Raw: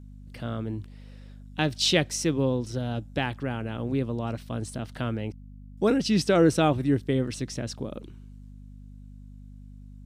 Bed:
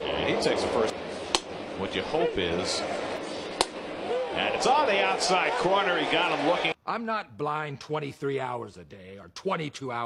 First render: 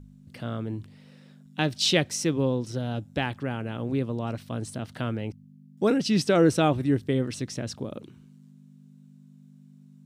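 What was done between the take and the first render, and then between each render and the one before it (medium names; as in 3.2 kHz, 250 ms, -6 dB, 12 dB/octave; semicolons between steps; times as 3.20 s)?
de-hum 50 Hz, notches 2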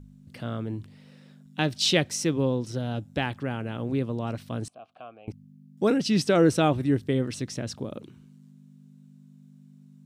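4.68–5.28 s: vowel filter a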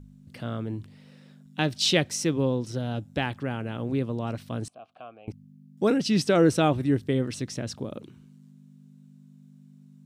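no audible change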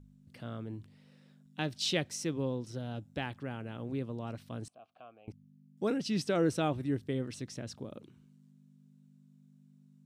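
trim -9 dB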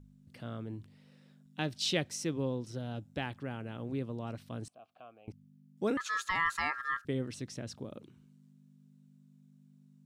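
5.97–7.05 s: ring modulator 1.5 kHz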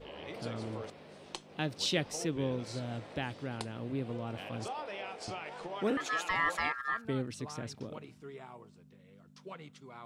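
add bed -18 dB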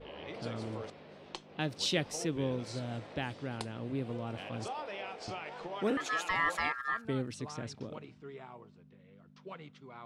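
level-controlled noise filter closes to 3 kHz, open at -32.5 dBFS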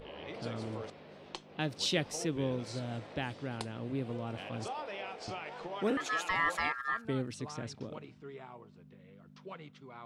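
upward compressor, threshold -50 dBFS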